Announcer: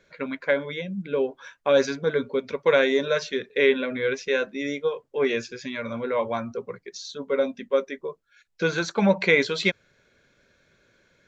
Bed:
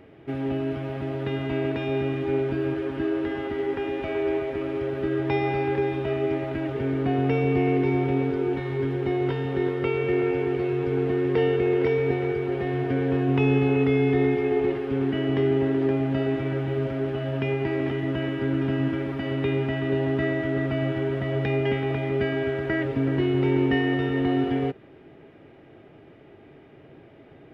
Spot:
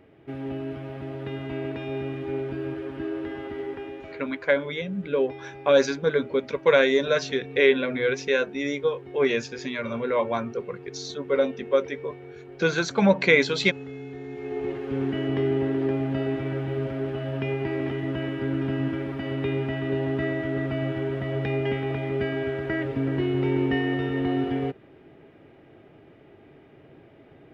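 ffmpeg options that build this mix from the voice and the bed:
-filter_complex "[0:a]adelay=4000,volume=1.12[s0];[1:a]volume=3.16,afade=t=out:st=3.58:d=0.71:silence=0.251189,afade=t=in:st=14.26:d=0.72:silence=0.177828[s1];[s0][s1]amix=inputs=2:normalize=0"

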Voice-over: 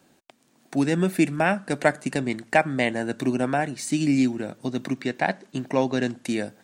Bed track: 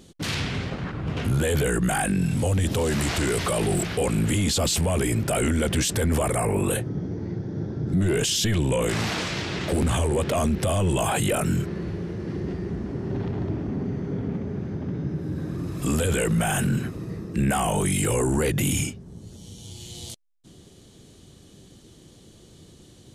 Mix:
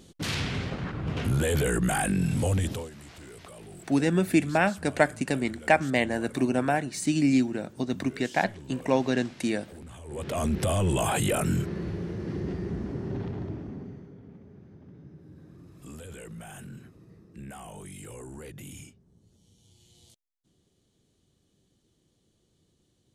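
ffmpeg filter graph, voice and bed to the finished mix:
-filter_complex "[0:a]adelay=3150,volume=0.841[s0];[1:a]volume=7.5,afade=t=out:st=2.55:d=0.35:silence=0.1,afade=t=in:st=10.04:d=0.53:silence=0.1,afade=t=out:st=12.84:d=1.3:silence=0.133352[s1];[s0][s1]amix=inputs=2:normalize=0"

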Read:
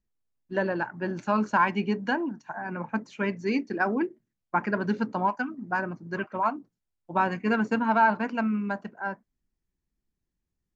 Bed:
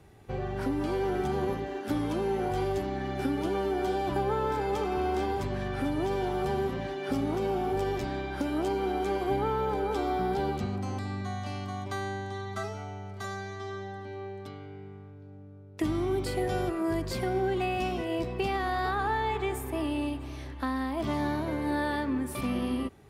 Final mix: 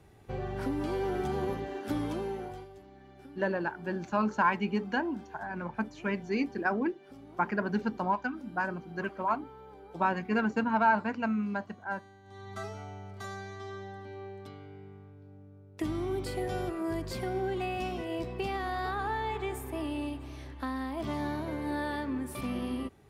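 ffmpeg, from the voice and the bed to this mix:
-filter_complex "[0:a]adelay=2850,volume=0.668[s0];[1:a]volume=5.31,afade=t=out:st=2.03:d=0.65:silence=0.11885,afade=t=in:st=12.23:d=0.41:silence=0.141254[s1];[s0][s1]amix=inputs=2:normalize=0"

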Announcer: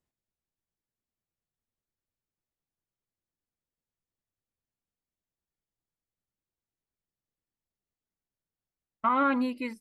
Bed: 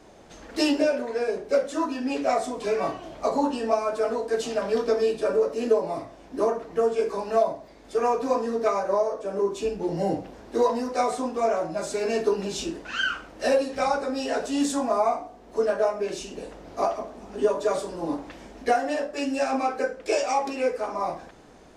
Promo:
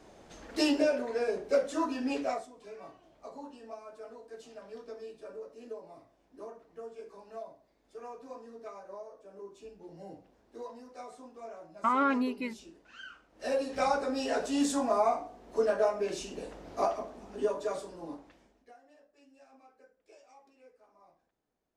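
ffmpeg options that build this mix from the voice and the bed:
-filter_complex "[0:a]adelay=2800,volume=0.794[s0];[1:a]volume=4.47,afade=t=out:st=2.13:d=0.35:silence=0.141254,afade=t=in:st=13.3:d=0.49:silence=0.133352,afade=t=out:st=16.76:d=1.92:silence=0.0316228[s1];[s0][s1]amix=inputs=2:normalize=0"

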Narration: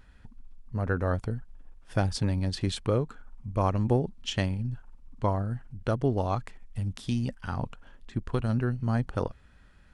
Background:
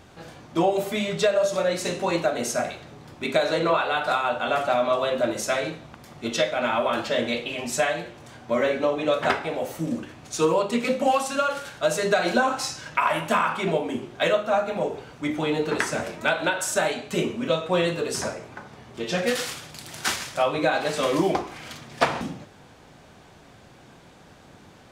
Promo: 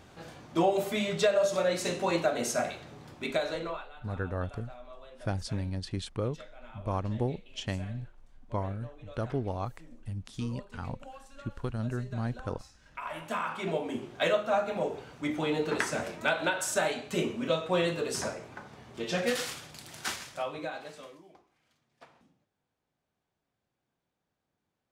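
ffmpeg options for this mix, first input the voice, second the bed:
-filter_complex "[0:a]adelay=3300,volume=0.501[s0];[1:a]volume=7.94,afade=t=out:st=3.04:d=0.86:silence=0.0707946,afade=t=in:st=12.79:d=1.29:silence=0.0794328,afade=t=out:st=19.43:d=1.76:silence=0.0354813[s1];[s0][s1]amix=inputs=2:normalize=0"

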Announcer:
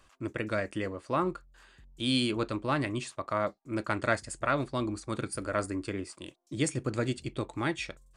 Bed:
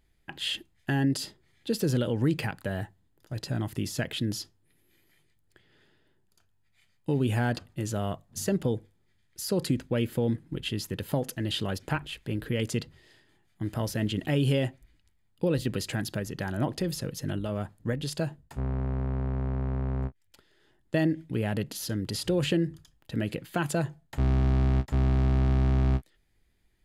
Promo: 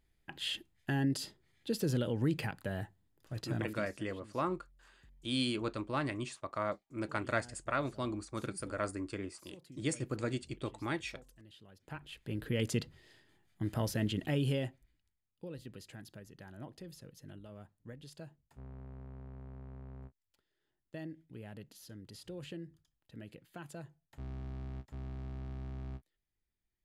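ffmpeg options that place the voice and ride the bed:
-filter_complex "[0:a]adelay=3250,volume=0.531[s0];[1:a]volume=7.94,afade=t=out:st=3.59:d=0.32:silence=0.0841395,afade=t=in:st=11.77:d=0.87:silence=0.0630957,afade=t=out:st=13.87:d=1.4:silence=0.16788[s1];[s0][s1]amix=inputs=2:normalize=0"

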